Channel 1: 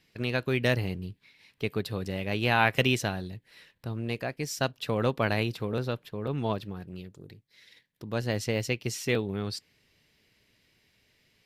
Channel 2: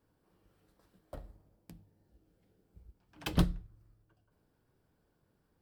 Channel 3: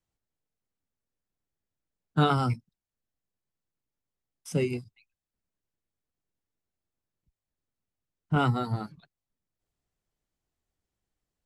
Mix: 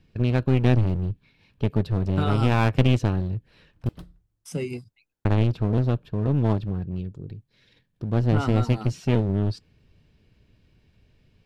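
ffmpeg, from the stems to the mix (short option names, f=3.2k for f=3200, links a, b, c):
-filter_complex "[0:a]aemphasis=mode=reproduction:type=riaa,bandreject=f=2k:w=6,aeval=exprs='clip(val(0),-1,0.0531)':c=same,volume=1.5dB,asplit=3[a][b][c];[a]atrim=end=3.89,asetpts=PTS-STARTPTS,afade=t=out:st=3.886:d=0.004:c=hsin[d];[b]atrim=start=3.89:end=5.25,asetpts=PTS-STARTPTS,volume=0[e];[c]atrim=start=5.25,asetpts=PTS-STARTPTS,afade=t=in:d=0.004:c=hsin[f];[d][e][f]concat=n=3:v=0:a=1[g];[1:a]adelay=600,volume=-16dB[h];[2:a]acompressor=threshold=-25dB:ratio=3,volume=0dB[i];[g][h][i]amix=inputs=3:normalize=0"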